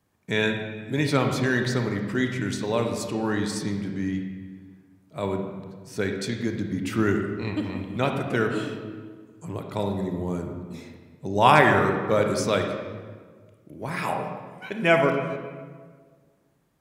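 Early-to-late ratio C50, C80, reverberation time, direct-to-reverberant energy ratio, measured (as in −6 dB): 5.0 dB, 6.5 dB, 1.6 s, 3.5 dB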